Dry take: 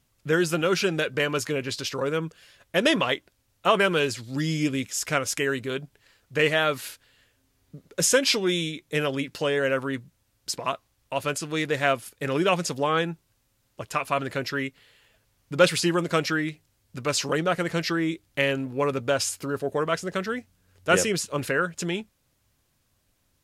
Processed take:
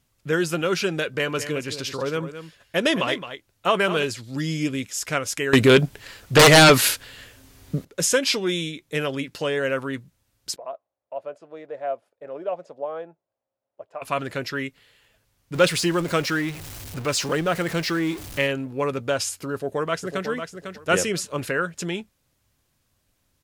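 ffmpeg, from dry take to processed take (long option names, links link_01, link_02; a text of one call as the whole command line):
ffmpeg -i in.wav -filter_complex "[0:a]asettb=1/sr,asplit=3[link_01][link_02][link_03];[link_01]atrim=end=1.054[link_04];[link_02]atrim=start=1.05:end=4.04,asetpts=PTS-STARTPTS,afade=type=in:duration=0.004:curve=qsin,afade=type=out:start_time=2.986:duration=0.004:curve=qsin,aecho=1:1:216:0.282,atrim=end_sample=131859[link_05];[link_03]atrim=start=4.036[link_06];[link_04][link_05]acrossfade=duration=0.004:curve1=hsin:curve2=qsin[link_07];[link_07][link_06]acrossfade=duration=0.004:curve1=qsin:curve2=hsin,asettb=1/sr,asplit=3[link_08][link_09][link_10];[link_08]atrim=end=5.534[link_11];[link_09]atrim=start=5.53:end=7.85,asetpts=PTS-STARTPTS,afade=type=in:duration=0.004:curve=qsin,afade=type=out:start_time=2.316:duration=0.004:curve=qsin,aeval=exprs='0.422*sin(PI/2*5.01*val(0)/0.422)':channel_layout=same[link_12];[link_10]atrim=start=7.846[link_13];[link_11][link_12]acrossfade=duration=0.004:curve1=hsin:curve2=qsin[link_14];[link_14][link_13]acrossfade=duration=0.004:curve1=qsin:curve2=hsin,asettb=1/sr,asplit=3[link_15][link_16][link_17];[link_15]atrim=end=10.564[link_18];[link_16]atrim=start=10.56:end=14.02,asetpts=PTS-STARTPTS,afade=type=in:duration=0.004:curve=qsin,afade=type=out:start_time=3.456:duration=0.004:curve=qsin,bandpass=frequency=620:width_type=q:width=3.9[link_19];[link_17]atrim=start=14.016[link_20];[link_18][link_19]acrossfade=duration=0.004:curve1=hsin:curve2=qsin[link_21];[link_21][link_20]acrossfade=duration=0.004:curve1=qsin:curve2=hsin,asettb=1/sr,asplit=3[link_22][link_23][link_24];[link_22]atrim=end=15.544[link_25];[link_23]atrim=start=15.54:end=18.47,asetpts=PTS-STARTPTS,afade=type=in:duration=0.004:curve=qsin,afade=type=out:start_time=2.926:duration=0.004:curve=qsin,aeval=exprs='val(0)+0.5*0.0251*sgn(val(0))':channel_layout=same[link_26];[link_24]atrim=start=18.466[link_27];[link_25][link_26]acrossfade=duration=0.004:curve1=hsin:curve2=qsin[link_28];[link_28][link_27]acrossfade=duration=0.004:curve1=qsin:curve2=hsin,asplit=2[link_29][link_30];[link_30]afade=type=in:start_time=19.53:duration=0.01,afade=type=out:start_time=20.27:duration=0.01,aecho=0:1:500|1000|1500:0.421697|0.0843393|0.0168679[link_31];[link_29][link_31]amix=inputs=2:normalize=0" out.wav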